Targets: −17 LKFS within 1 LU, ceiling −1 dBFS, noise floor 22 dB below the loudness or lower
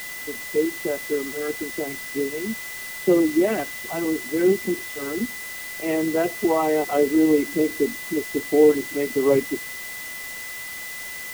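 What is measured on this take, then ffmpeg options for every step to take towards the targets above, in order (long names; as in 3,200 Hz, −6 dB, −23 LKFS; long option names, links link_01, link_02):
interfering tone 2,000 Hz; level of the tone −34 dBFS; background noise floor −34 dBFS; target noise floor −46 dBFS; integrated loudness −23.5 LKFS; sample peak −6.0 dBFS; target loudness −17.0 LKFS
→ -af "bandreject=frequency=2000:width=30"
-af "afftdn=noise_reduction=12:noise_floor=-34"
-af "volume=6.5dB,alimiter=limit=-1dB:level=0:latency=1"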